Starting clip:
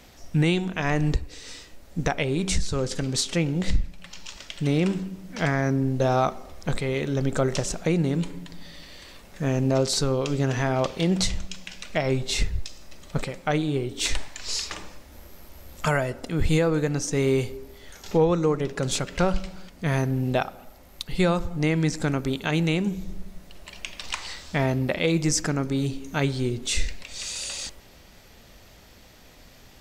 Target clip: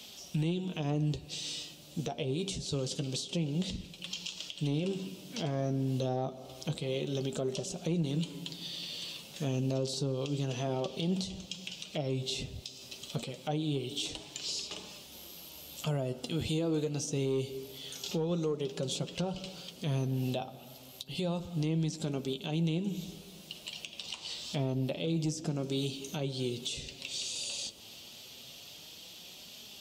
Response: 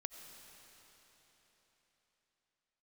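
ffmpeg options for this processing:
-filter_complex "[0:a]flanger=delay=4.6:depth=4.6:regen=51:speed=0.27:shape=triangular,acrossover=split=770[s0][s1];[s1]acompressor=threshold=0.00501:ratio=6[s2];[s0][s2]amix=inputs=2:normalize=0,highpass=120,highshelf=f=2400:t=q:w=3:g=8,asplit=2[s3][s4];[1:a]atrim=start_sample=2205,adelay=13[s5];[s4][s5]afir=irnorm=-1:irlink=0,volume=0.251[s6];[s3][s6]amix=inputs=2:normalize=0,asoftclip=type=tanh:threshold=0.188,alimiter=limit=0.0631:level=0:latency=1:release=201"

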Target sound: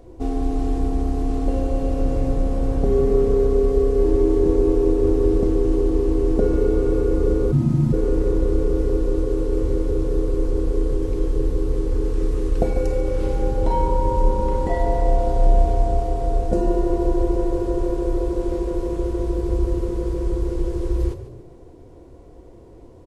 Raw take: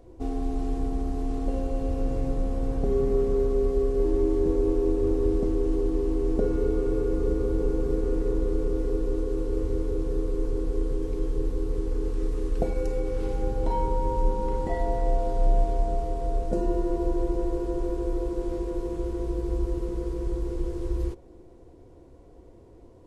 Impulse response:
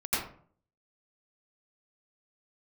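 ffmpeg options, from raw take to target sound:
-filter_complex "[0:a]asplit=4[s0][s1][s2][s3];[s1]adelay=143,afreqshift=32,volume=0.224[s4];[s2]adelay=286,afreqshift=64,volume=0.0759[s5];[s3]adelay=429,afreqshift=96,volume=0.026[s6];[s0][s4][s5][s6]amix=inputs=4:normalize=0,asplit=3[s7][s8][s9];[s7]afade=t=out:st=7.51:d=0.02[s10];[s8]afreqshift=-180,afade=t=in:st=7.51:d=0.02,afade=t=out:st=7.92:d=0.02[s11];[s9]afade=t=in:st=7.92:d=0.02[s12];[s10][s11][s12]amix=inputs=3:normalize=0,volume=2"

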